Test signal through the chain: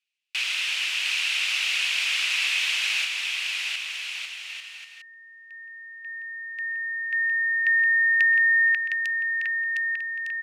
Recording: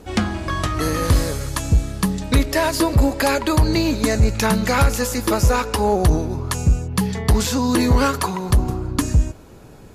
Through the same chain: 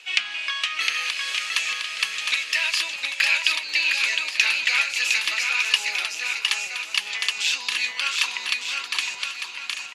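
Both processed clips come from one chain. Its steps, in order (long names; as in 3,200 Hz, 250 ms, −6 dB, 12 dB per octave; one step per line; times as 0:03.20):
downward compressor 5 to 1, threshold −22 dBFS
high-pass with resonance 2,600 Hz, resonance Q 4.6
high-frequency loss of the air 75 metres
bouncing-ball delay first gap 710 ms, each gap 0.7×, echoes 5
level +6 dB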